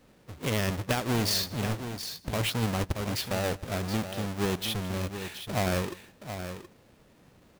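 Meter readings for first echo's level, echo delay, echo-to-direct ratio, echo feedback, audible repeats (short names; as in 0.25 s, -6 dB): -23.0 dB, 0.159 s, -9.5 dB, no steady repeat, 3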